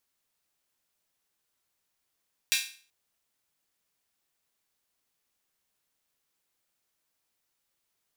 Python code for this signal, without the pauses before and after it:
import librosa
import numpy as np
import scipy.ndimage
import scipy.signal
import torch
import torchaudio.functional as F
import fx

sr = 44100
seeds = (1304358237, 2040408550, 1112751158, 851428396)

y = fx.drum_hat_open(sr, length_s=0.38, from_hz=2500.0, decay_s=0.42)